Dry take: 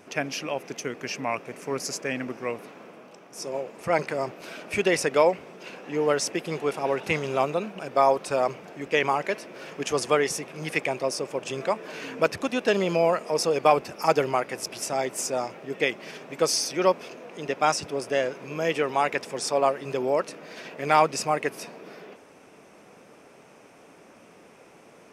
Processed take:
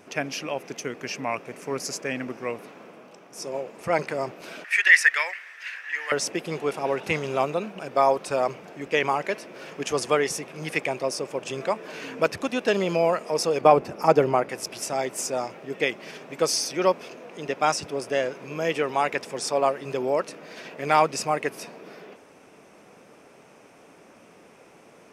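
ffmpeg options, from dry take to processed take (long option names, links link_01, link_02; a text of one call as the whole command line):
ffmpeg -i in.wav -filter_complex "[0:a]asettb=1/sr,asplit=3[link_01][link_02][link_03];[link_01]atrim=end=4.644[link_04];[link_02]atrim=start=4.64:end=6.12,asetpts=PTS-STARTPTS,afade=type=in:duration=0.004:curve=qsin,afade=type=out:start_time=1.476:duration=0.004:curve=qsin,highpass=frequency=1800:width_type=q:width=9.3[link_05];[link_03]atrim=start=6.116[link_06];[link_04][link_05]acrossfade=duration=0.004:curve1=hsin:curve2=qsin[link_07];[link_07][link_06]acrossfade=duration=0.004:curve1=qsin:curve2=hsin,asettb=1/sr,asplit=3[link_08][link_09][link_10];[link_08]atrim=end=13.614[link_11];[link_09]atrim=start=13.61:end=14.49,asetpts=PTS-STARTPTS,afade=type=in:duration=0.004:curve=qsin,afade=type=out:start_time=0.876:duration=0.004:curve=qsin,tiltshelf=frequency=1400:gain=5.5[link_12];[link_10]atrim=start=14.486[link_13];[link_11][link_12]acrossfade=duration=0.004:curve1=hsin:curve2=qsin[link_14];[link_14][link_13]acrossfade=duration=0.004:curve1=qsin:curve2=hsin" out.wav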